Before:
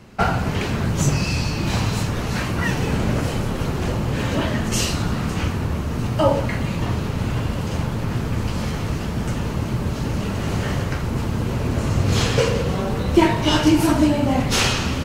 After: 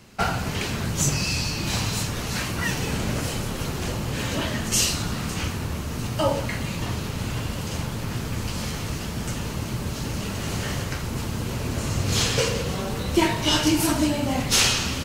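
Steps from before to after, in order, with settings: high shelf 2800 Hz +11.5 dB; gain -6 dB

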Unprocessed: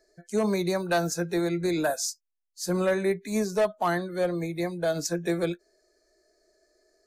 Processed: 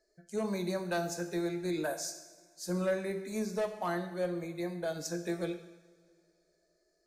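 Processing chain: two-slope reverb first 0.9 s, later 2.8 s, from -18 dB, DRR 6.5 dB; gain -9 dB

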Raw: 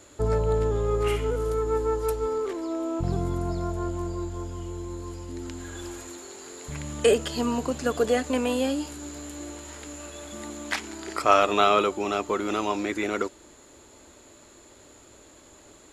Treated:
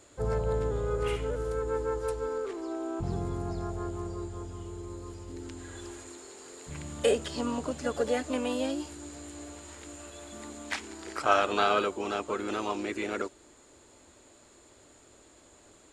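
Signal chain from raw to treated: downsampling 22050 Hz; harmoniser +3 st -8 dB; gain -6 dB

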